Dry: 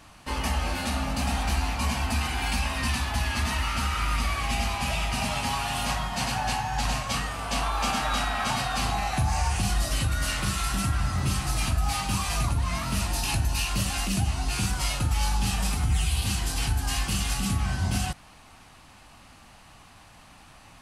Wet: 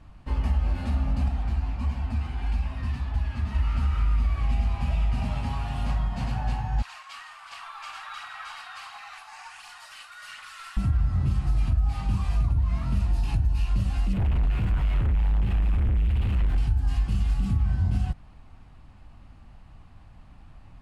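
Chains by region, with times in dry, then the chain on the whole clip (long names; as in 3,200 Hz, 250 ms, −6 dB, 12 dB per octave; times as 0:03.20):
0:01.28–0:03.55: running median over 3 samples + flanger 1.6 Hz, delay 1.9 ms, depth 8.9 ms, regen +46%
0:06.82–0:10.77: high-pass filter 1,100 Hz 24 dB per octave + phase shifter 1.4 Hz, delay 3.6 ms, feedback 37% + single-tap delay 366 ms −8.5 dB
0:14.13–0:16.58: sign of each sample alone + high shelf with overshoot 3,700 Hz −10.5 dB, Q 1.5
whole clip: RIAA equalisation playback; notch filter 6,000 Hz, Q 20; downward compressor 3 to 1, threshold −12 dBFS; level −8 dB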